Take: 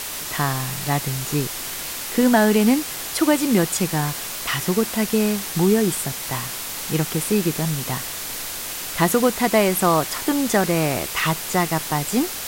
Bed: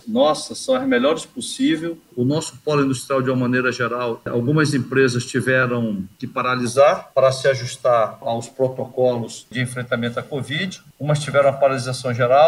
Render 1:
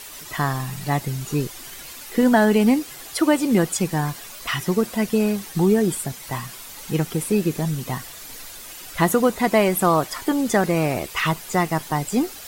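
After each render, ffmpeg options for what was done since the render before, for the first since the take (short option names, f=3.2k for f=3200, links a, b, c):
-af "afftdn=nr=11:nf=-30"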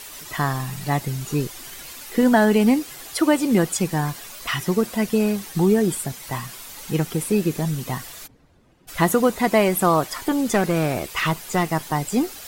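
-filter_complex "[0:a]asplit=3[a][b][c];[a]afade=t=out:st=8.26:d=0.02[d];[b]bandpass=f=120:t=q:w=0.82,afade=t=in:st=8.26:d=0.02,afade=t=out:st=8.87:d=0.02[e];[c]afade=t=in:st=8.87:d=0.02[f];[d][e][f]amix=inputs=3:normalize=0,asettb=1/sr,asplit=3[g][h][i];[g]atrim=end=10.264[j];[h]atrim=start=10.26:end=11.65,asetpts=PTS-STARTPTS,afade=t=in:d=0.004:c=qsin,afade=t=out:st=1.386:d=0.004:c=qsin,aeval=exprs='clip(val(0),-1,0.126)':c=same[k];[i]atrim=start=11.646[l];[j][k]acrossfade=d=0.004:c1=hsin:c2=qsin[m];[m][l]acrossfade=d=0.004:c1=qsin:c2=hsin"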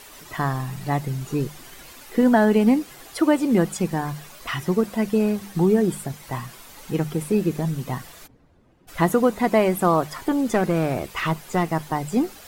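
-af "highshelf=f=2.2k:g=-8,bandreject=f=50:t=h:w=6,bandreject=f=100:t=h:w=6,bandreject=f=150:t=h:w=6,bandreject=f=200:t=h:w=6"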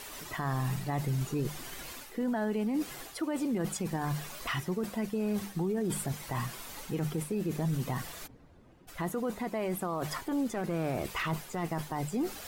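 -af "areverse,acompressor=threshold=-25dB:ratio=12,areverse,alimiter=level_in=0.5dB:limit=-24dB:level=0:latency=1:release=14,volume=-0.5dB"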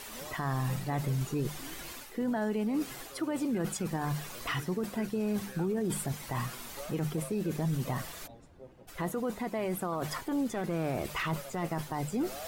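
-filter_complex "[1:a]volume=-32.5dB[a];[0:a][a]amix=inputs=2:normalize=0"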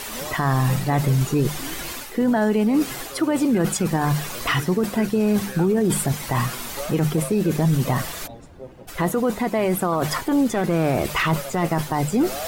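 -af "volume=12dB"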